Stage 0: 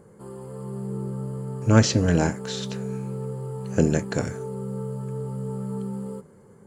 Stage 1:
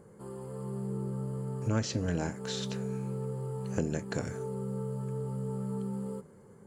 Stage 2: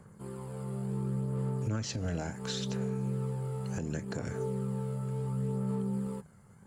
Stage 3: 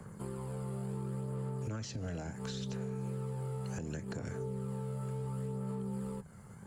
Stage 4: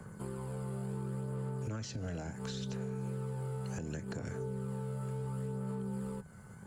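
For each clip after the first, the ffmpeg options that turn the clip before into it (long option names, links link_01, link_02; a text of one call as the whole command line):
ffmpeg -i in.wav -af "acompressor=threshold=-27dB:ratio=2.5,volume=-3.5dB" out.wav
ffmpeg -i in.wav -filter_complex "[0:a]acrossover=split=240|840[link_01][link_02][link_03];[link_02]aeval=exprs='sgn(val(0))*max(abs(val(0))-0.0015,0)':channel_layout=same[link_04];[link_01][link_04][link_03]amix=inputs=3:normalize=0,aphaser=in_gain=1:out_gain=1:delay=1.5:decay=0.34:speed=0.7:type=sinusoidal,alimiter=level_in=2dB:limit=-24dB:level=0:latency=1:release=142,volume=-2dB,volume=1dB" out.wav
ffmpeg -i in.wav -filter_complex "[0:a]acrossover=split=98|370[link_01][link_02][link_03];[link_01]acompressor=threshold=-53dB:ratio=4[link_04];[link_02]acompressor=threshold=-48dB:ratio=4[link_05];[link_03]acompressor=threshold=-52dB:ratio=4[link_06];[link_04][link_05][link_06]amix=inputs=3:normalize=0,volume=5.5dB" out.wav
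ffmpeg -i in.wav -af "aeval=exprs='val(0)+0.000562*sin(2*PI*1500*n/s)':channel_layout=same" out.wav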